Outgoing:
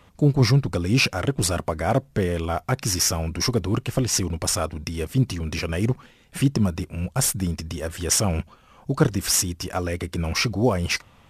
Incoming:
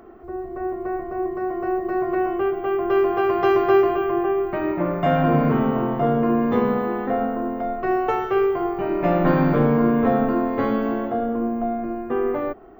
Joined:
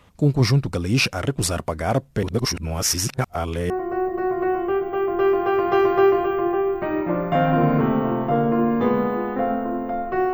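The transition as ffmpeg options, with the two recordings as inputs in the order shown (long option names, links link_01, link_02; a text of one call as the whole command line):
ffmpeg -i cue0.wav -i cue1.wav -filter_complex "[0:a]apad=whole_dur=10.33,atrim=end=10.33,asplit=2[link_01][link_02];[link_01]atrim=end=2.232[link_03];[link_02]atrim=start=2.228:end=3.702,asetpts=PTS-STARTPTS,areverse[link_04];[1:a]atrim=start=1.408:end=8.04[link_05];[link_03][link_04]acrossfade=duration=0.004:curve1=hsin:curve2=hsin[link_06];[link_06][link_05]acrossfade=duration=0.004:curve1=hsin:curve2=hsin" out.wav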